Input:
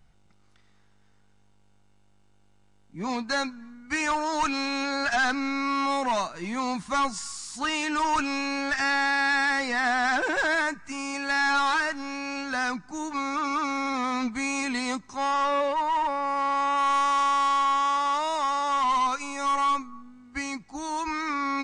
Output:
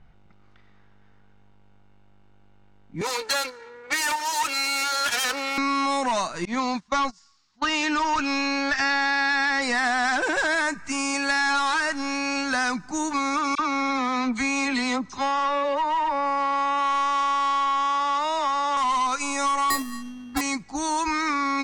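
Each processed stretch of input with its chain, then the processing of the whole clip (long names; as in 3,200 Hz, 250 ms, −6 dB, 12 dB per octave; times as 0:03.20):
0:03.01–0:05.58: lower of the sound and its delayed copy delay 2.2 ms + high-pass filter 410 Hz 6 dB per octave + multiband upward and downward compressor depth 40%
0:06.45–0:09.62: low-pass filter 6,000 Hz 24 dB per octave + noise gate −32 dBFS, range −25 dB
0:13.55–0:18.77: low-pass filter 5,000 Hz + all-pass dispersion lows, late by 43 ms, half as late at 2,000 Hz
0:19.70–0:20.41: parametric band 260 Hz +5 dB 0.95 octaves + sample-rate reduction 3,000 Hz
whole clip: downward compressor, threshold −28 dBFS; high-shelf EQ 7,000 Hz +9 dB; low-pass that shuts in the quiet parts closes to 2,200 Hz, open at −30.5 dBFS; level +6.5 dB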